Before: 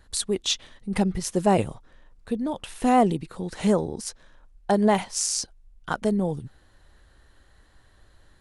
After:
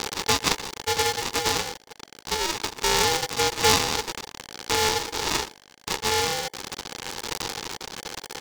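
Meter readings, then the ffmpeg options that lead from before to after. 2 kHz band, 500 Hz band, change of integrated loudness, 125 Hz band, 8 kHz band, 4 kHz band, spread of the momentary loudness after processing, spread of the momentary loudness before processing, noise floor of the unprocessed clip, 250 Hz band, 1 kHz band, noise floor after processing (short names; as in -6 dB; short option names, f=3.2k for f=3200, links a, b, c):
+9.5 dB, -2.5 dB, +0.5 dB, -5.5 dB, +4.0 dB, +9.0 dB, 14 LU, 14 LU, -58 dBFS, -12.0 dB, +1.0 dB, -54 dBFS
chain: -filter_complex "[0:a]aeval=exprs='val(0)+0.5*0.0531*sgn(val(0))':c=same,aphaser=in_gain=1:out_gain=1:delay=1.1:decay=0.73:speed=0.27:type=triangular,aresample=16000,acrusher=samples=17:mix=1:aa=0.000001,aresample=44100,acompressor=threshold=-18dB:ratio=3,aexciter=amount=4.3:drive=3.9:freq=3.3k,highpass=f=170:w=0.5412,highpass=f=170:w=1.3066,asplit=2[a][b];[b]aecho=0:1:125:0.133[c];[a][c]amix=inputs=2:normalize=0,anlmdn=10,lowpass=f=6.1k:w=0.5412,lowpass=f=6.1k:w=1.3066,equalizer=f=390:w=0.78:g=-6,aeval=exprs='val(0)*sgn(sin(2*PI*650*n/s))':c=same"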